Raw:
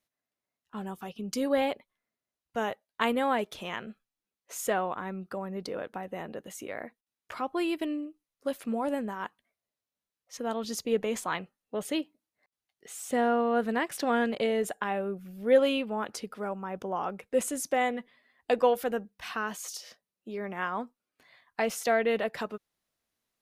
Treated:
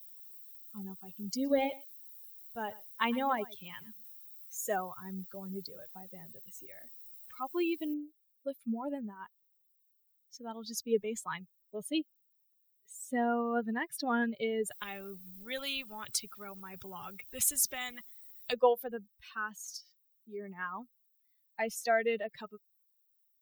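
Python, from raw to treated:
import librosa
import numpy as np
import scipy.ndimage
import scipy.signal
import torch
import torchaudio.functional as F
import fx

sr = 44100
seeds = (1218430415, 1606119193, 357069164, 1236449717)

y = fx.echo_single(x, sr, ms=112, db=-10.0, at=(1.44, 4.75), fade=0.02)
y = fx.noise_floor_step(y, sr, seeds[0], at_s=7.94, before_db=-48, after_db=-59, tilt_db=0.0)
y = fx.spectral_comp(y, sr, ratio=2.0, at=(14.7, 18.52), fade=0.02)
y = fx.bin_expand(y, sr, power=2.0)
y = fx.high_shelf(y, sr, hz=6100.0, db=7.5)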